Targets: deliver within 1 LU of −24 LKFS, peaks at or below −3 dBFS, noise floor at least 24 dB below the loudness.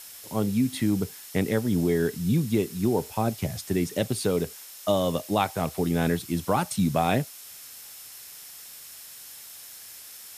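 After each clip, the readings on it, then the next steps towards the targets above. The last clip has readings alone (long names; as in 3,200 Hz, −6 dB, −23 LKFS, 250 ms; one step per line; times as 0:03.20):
interfering tone 5,300 Hz; level of the tone −55 dBFS; background noise floor −45 dBFS; target noise floor −51 dBFS; integrated loudness −26.5 LKFS; sample peak −9.0 dBFS; target loudness −24.0 LKFS
→ notch filter 5,300 Hz, Q 30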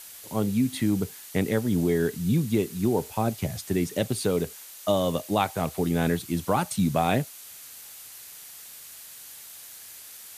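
interfering tone none found; background noise floor −45 dBFS; target noise floor −51 dBFS
→ broadband denoise 6 dB, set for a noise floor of −45 dBFS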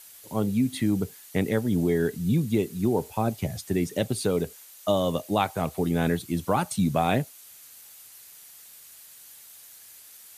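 background noise floor −49 dBFS; target noise floor −51 dBFS
→ broadband denoise 6 dB, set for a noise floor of −49 dBFS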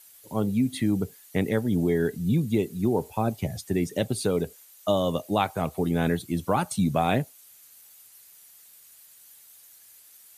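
background noise floor −53 dBFS; integrated loudness −26.5 LKFS; sample peak −9.5 dBFS; target loudness −24.0 LKFS
→ level +2.5 dB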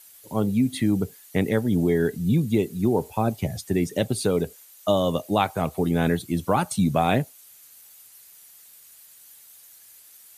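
integrated loudness −24.0 LKFS; sample peak −7.0 dBFS; background noise floor −51 dBFS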